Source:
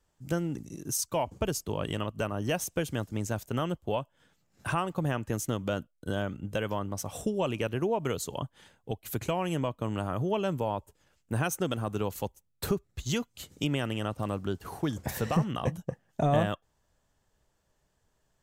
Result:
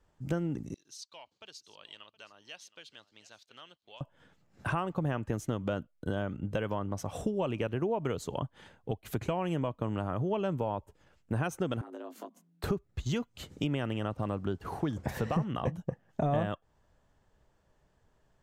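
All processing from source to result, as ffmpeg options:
-filter_complex "[0:a]asettb=1/sr,asplit=3[a][b][c];[a]atrim=end=0.744[d];[b]atrim=start=0.74:end=4.01,asetpts=PTS-STARTPTS,afade=t=in:d=0.004:c=qsin,afade=t=out:st=3.266:d=0.004:c=qsin,bandpass=f=4.1k:t=q:w=3.9,aecho=1:1:719:0.112,atrim=end_sample=144207[e];[c]atrim=start=4.006[f];[d][e]acrossfade=d=0.004:c1=hsin:c2=qsin[g];[g][f]acrossfade=d=0.004:c1=qsin:c2=hsin,asettb=1/sr,asplit=3[h][i][j];[h]atrim=end=11.814[k];[i]atrim=start=11.81:end=12.64,asetpts=PTS-STARTPTS,afade=t=in:d=0.004:c=qsin,afade=t=out:st=0.826:d=0.004:c=qsin,acompressor=threshold=-44dB:ratio=12:attack=3.2:release=140:knee=1:detection=peak,afreqshift=170,asplit=2[l][m];[m]adelay=19,volume=-5dB[n];[l][n]amix=inputs=2:normalize=0,atrim=end_sample=36603[o];[j]atrim=start=12.636[p];[k][o]acrossfade=d=0.004:c1=hsin:c2=qsin[q];[q][p]acrossfade=d=0.004:c1=qsin:c2=hsin,highshelf=f=3.3k:g=-9,acompressor=threshold=-38dB:ratio=2,highshelf=f=9k:g=-8,volume=5dB"

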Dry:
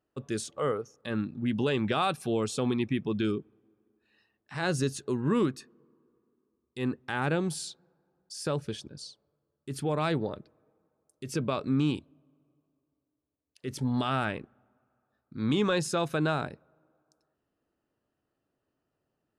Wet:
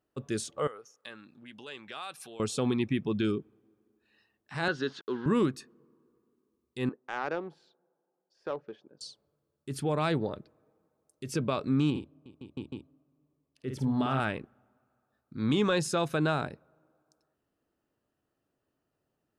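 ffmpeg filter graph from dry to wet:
-filter_complex "[0:a]asettb=1/sr,asplit=3[a][b][c];[a]atrim=end=0.674[d];[b]atrim=start=0.67:end=2.4,asetpts=PTS-STARTPTS,afade=t=in:d=0.004:c=qsin,afade=t=out:st=1.726:d=0.004:c=qsin,acompressor=threshold=-34dB:ratio=3:attack=3.2:release=140:knee=1:detection=peak,highpass=f=1.4k:p=1[e];[c]atrim=start=2.396[f];[d][e]acrossfade=d=0.004:c1=hsin:c2=qsin[g];[g][f]acrossfade=d=0.004:c1=qsin:c2=hsin,asettb=1/sr,asplit=3[h][i][j];[h]atrim=end=4.684[k];[i]atrim=start=4.68:end=5.26,asetpts=PTS-STARTPTS,afade=t=in:d=0.004:c=qsin,afade=t=out:st=0.576:d=0.004:c=qsin,acompressor=mode=upward:threshold=-38dB:ratio=2.5:attack=3.2:release=140:knee=2.83:detection=peak,aeval=exprs='val(0)*gte(abs(val(0)),0.00562)':c=same,highpass=300,equalizer=f=610:t=q:w=4:g=-7,equalizer=f=1.5k:t=q:w=4:g=10,equalizer=f=2.4k:t=q:w=4:g=-8,equalizer=f=3.3k:t=q:w=4:g=6,lowpass=f=4.2k:w=0.5412,lowpass=f=4.2k:w=1.3066[l];[j]atrim=start=5.256[m];[k][l]acrossfade=d=0.004:c1=hsin:c2=qsin[n];[n][m]acrossfade=d=0.004:c1=qsin:c2=hsin,asettb=1/sr,asplit=3[o][p][q];[o]atrim=end=6.894[r];[p]atrim=start=6.89:end=9.01,asetpts=PTS-STARTPTS,afade=t=in:d=0.004:c=qsin,afade=t=out:st=2.116:d=0.004:c=qsin,highpass=470,equalizer=f=8.6k:t=o:w=0.28:g=-9.5,adynamicsmooth=sensitivity=1:basefreq=1k[s];[q]atrim=start=9.006[t];[r][s]acrossfade=d=0.004:c1=hsin:c2=qsin[u];[u][t]acrossfade=d=0.004:c1=qsin:c2=hsin,asettb=1/sr,asplit=3[v][w][x];[v]atrim=end=11.904[y];[w]atrim=start=11.9:end=14.2,asetpts=PTS-STARTPTS,afade=t=in:d=0.004:c=qsin,afade=t=out:st=2.296:d=0.004:c=qsin,highshelf=f=2.4k:g=-10.5,aecho=1:1:52|355|509|669|820:0.562|0.119|0.224|0.531|0.447,atrim=end_sample=101430[z];[x]atrim=start=14.196[aa];[y][z]acrossfade=d=0.004:c1=hsin:c2=qsin[ab];[ab][aa]acrossfade=d=0.004:c1=qsin:c2=hsin"

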